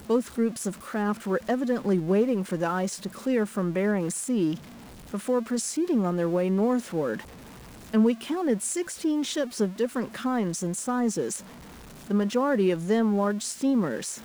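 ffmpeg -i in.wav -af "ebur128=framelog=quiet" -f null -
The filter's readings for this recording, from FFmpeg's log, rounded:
Integrated loudness:
  I:         -26.7 LUFS
  Threshold: -37.1 LUFS
Loudness range:
  LRA:         1.8 LU
  Threshold: -47.3 LUFS
  LRA low:   -28.3 LUFS
  LRA high:  -26.5 LUFS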